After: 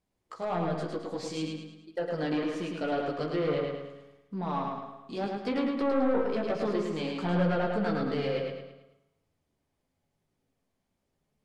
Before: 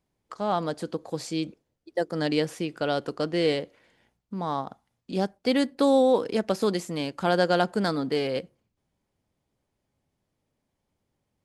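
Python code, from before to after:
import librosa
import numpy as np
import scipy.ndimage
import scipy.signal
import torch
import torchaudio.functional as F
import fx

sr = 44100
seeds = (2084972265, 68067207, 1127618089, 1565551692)

y = fx.chorus_voices(x, sr, voices=4, hz=0.21, base_ms=15, depth_ms=4.5, mix_pct=45)
y = 10.0 ** (-25.0 / 20.0) * np.tanh(y / 10.0 ** (-25.0 / 20.0))
y = fx.env_lowpass_down(y, sr, base_hz=400.0, full_db=-21.5)
y = fx.echo_feedback(y, sr, ms=107, feedback_pct=43, wet_db=-3.5)
y = fx.rev_spring(y, sr, rt60_s=1.0, pass_ms=(34, 57), chirp_ms=30, drr_db=9.0)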